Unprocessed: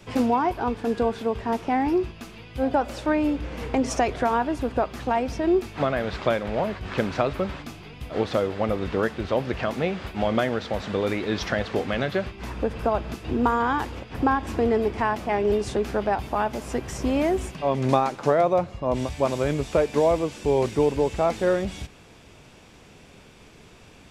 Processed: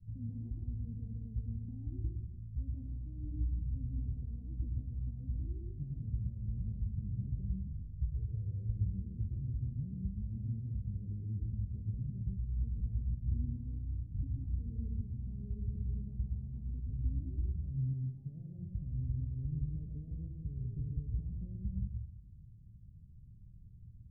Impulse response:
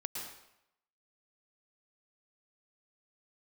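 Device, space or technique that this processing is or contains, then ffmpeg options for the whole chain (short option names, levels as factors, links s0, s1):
club heard from the street: -filter_complex "[0:a]asettb=1/sr,asplit=3[s0][s1][s2];[s0]atrim=end=7.724[s3];[s1]atrim=start=7.72:end=8.73,asetpts=PTS-STARTPTS,afade=t=in:d=0.004:c=qsin,afade=t=out:st=1.006:d=0.004:c=qsin,aecho=1:1:2.1:0.71,atrim=end_sample=44541[s4];[s2]atrim=start=8.726[s5];[s3][s4]acrossfade=d=0.004:c1=hsin:c2=qsin[s6];[s6][s5]acrossfade=d=0.004:c1=qsin:c2=hsin,alimiter=limit=0.133:level=0:latency=1,lowpass=f=130:w=0.5412,lowpass=f=130:w=1.3066[s7];[1:a]atrim=start_sample=2205[s8];[s7][s8]afir=irnorm=-1:irlink=0,volume=1.26"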